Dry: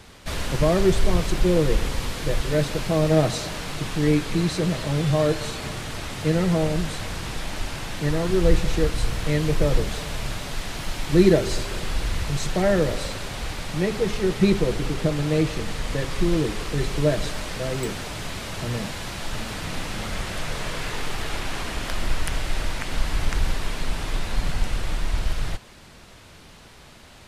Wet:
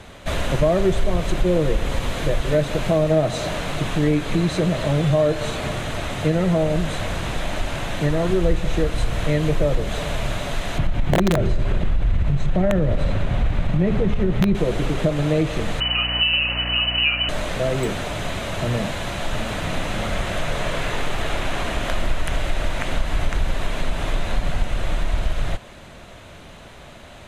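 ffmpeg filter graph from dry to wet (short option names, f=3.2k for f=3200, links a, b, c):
-filter_complex "[0:a]asettb=1/sr,asplit=3[a][b][c];[a]atrim=end=10.784[d];[b]atrim=start=10.78:end=14.55,asetpts=PTS-STARTPTS,afade=t=in:d=0.004:c=qsin,afade=t=out:st=3.766:d=0.004:c=qsin,bass=f=250:g=12,treble=f=4k:g=-11,acompressor=threshold=-15dB:ratio=4:attack=3.2:release=140:knee=1:detection=peak,aeval=exprs='(mod(3.16*val(0)+1,2)-1)/3.16':c=same[e];[c]atrim=start=14.546[f];[d][e]acrossfade=d=0.004:c1=hsin:c2=qsin[g];[g][f]acrossfade=d=0.004:c1=qsin:c2=hsin,asettb=1/sr,asplit=3[h][i][j];[h]atrim=end=15.804[k];[i]atrim=start=15.8:end=17.29,asetpts=PTS-STARTPTS,afade=t=in:d=0.004:c=qsin,afade=t=out:st=1.486:d=0.004:c=qsin,lowpass=f=2.6k:t=q:w=0.5098,lowpass=f=2.6k:t=q:w=0.6013,lowpass=f=2.6k:t=q:w=0.9,lowpass=f=2.6k:t=q:w=2.563,afreqshift=-3000,aeval=exprs='val(0)+0.0224*(sin(2*PI*60*n/s)+sin(2*PI*2*60*n/s)/2+sin(2*PI*3*60*n/s)/3+sin(2*PI*4*60*n/s)/4+sin(2*PI*5*60*n/s)/5)':c=same[l];[j]atrim=start=17.286[m];[k][l]acrossfade=d=0.004:c1=hsin:c2=qsin[n];[n][m]acrossfade=d=0.004:c1=qsin:c2=hsin,superequalizer=8b=1.78:14b=0.501,acompressor=threshold=-22dB:ratio=2.5,highshelf=f=6.3k:g=-8.5,volume=5.5dB"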